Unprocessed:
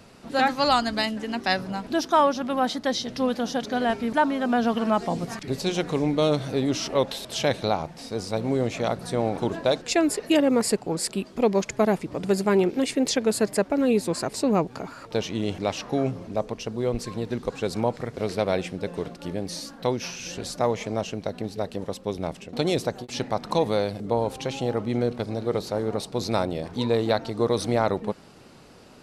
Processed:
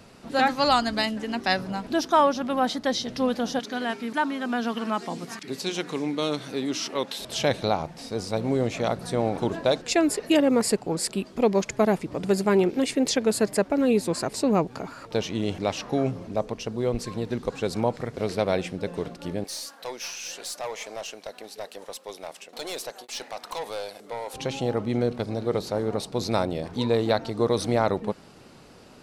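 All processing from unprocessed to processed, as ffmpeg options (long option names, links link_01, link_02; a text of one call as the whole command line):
ffmpeg -i in.wav -filter_complex "[0:a]asettb=1/sr,asplit=3[link_01][link_02][link_03];[link_01]atrim=end=3.594[link_04];[link_02]atrim=start=3.59:end=7.19,asetpts=PTS-STARTPTS,afade=type=in:duration=0.004:curve=qsin,afade=type=out:start_time=3.596:duration=0.004:curve=qsin,highpass=250,equalizer=frequency=610:width=1.3:gain=-8[link_05];[link_03]atrim=start=7.186[link_06];[link_04][link_05]acrossfade=duration=0.004:curve1=hsin:curve2=qsin[link_07];[link_07][link_06]acrossfade=duration=0.004:curve1=qsin:curve2=hsin,asettb=1/sr,asplit=3[link_08][link_09][link_10];[link_08]atrim=end=19.444[link_11];[link_09]atrim=start=19.44:end=24.34,asetpts=PTS-STARTPTS,afade=type=in:duration=0.004:curve=qsin,afade=type=out:start_time=4.896:duration=0.004:curve=qsin,highpass=650,highshelf=frequency=8900:gain=10,aeval=exprs='(tanh(22.4*val(0)+0.15)-tanh(0.15))/22.4':channel_layout=same[link_12];[link_10]atrim=start=24.336[link_13];[link_11][link_12]acrossfade=duration=0.004:curve1=hsin:curve2=qsin[link_14];[link_14][link_13]acrossfade=duration=0.004:curve1=qsin:curve2=hsin" out.wav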